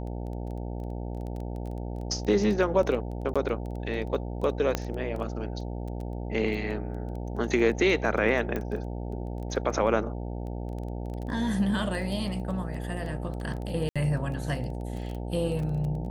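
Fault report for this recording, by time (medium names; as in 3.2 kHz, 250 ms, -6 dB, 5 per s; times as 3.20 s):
buzz 60 Hz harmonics 15 -34 dBFS
crackle 12 per s -33 dBFS
3.34–3.36 s: dropout 16 ms
4.75 s: pop -12 dBFS
8.56 s: pop -19 dBFS
13.89–13.96 s: dropout 66 ms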